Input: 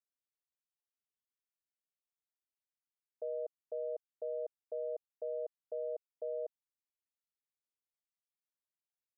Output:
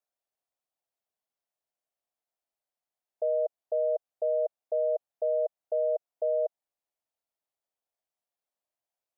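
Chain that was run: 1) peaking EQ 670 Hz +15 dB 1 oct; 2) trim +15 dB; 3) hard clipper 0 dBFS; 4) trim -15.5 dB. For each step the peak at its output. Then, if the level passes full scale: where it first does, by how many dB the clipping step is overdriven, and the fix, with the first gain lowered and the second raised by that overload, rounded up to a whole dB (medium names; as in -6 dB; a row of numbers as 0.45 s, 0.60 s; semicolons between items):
-20.5 dBFS, -5.5 dBFS, -5.5 dBFS, -21.0 dBFS; nothing clips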